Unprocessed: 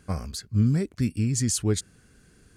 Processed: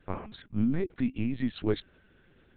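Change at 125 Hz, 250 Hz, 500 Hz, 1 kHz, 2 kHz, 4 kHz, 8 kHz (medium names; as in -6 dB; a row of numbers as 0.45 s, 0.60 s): -11.5 dB, -2.5 dB, -1.0 dB, -0.5 dB, -1.0 dB, -10.0 dB, under -40 dB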